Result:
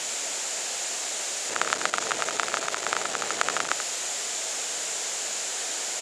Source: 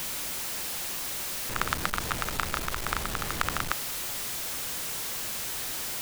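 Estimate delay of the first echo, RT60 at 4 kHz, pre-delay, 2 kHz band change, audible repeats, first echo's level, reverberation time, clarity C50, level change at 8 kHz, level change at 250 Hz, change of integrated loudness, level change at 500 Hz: 86 ms, none, none, +4.0 dB, 1, -9.5 dB, none, none, +7.5 dB, -3.5 dB, +3.0 dB, +6.5 dB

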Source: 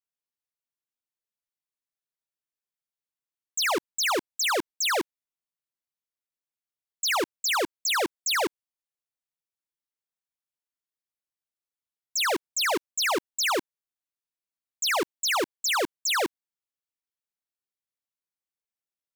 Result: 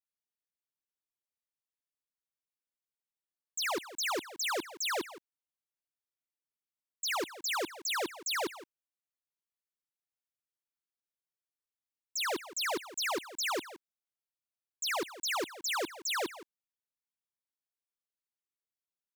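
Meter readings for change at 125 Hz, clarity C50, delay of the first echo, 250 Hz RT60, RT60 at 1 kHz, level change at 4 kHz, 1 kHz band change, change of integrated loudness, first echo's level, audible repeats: -8.0 dB, none, 0.168 s, none, none, -8.0 dB, -8.0 dB, -8.0 dB, -15.5 dB, 1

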